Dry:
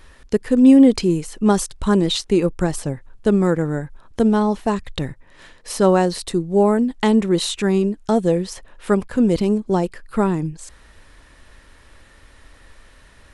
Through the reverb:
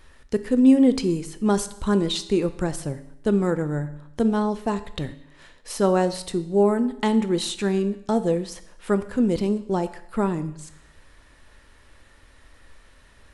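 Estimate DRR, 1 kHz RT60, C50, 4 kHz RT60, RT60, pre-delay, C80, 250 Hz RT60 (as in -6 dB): 11.0 dB, 0.80 s, 14.5 dB, 0.75 s, 0.80 s, 7 ms, 16.5 dB, 0.80 s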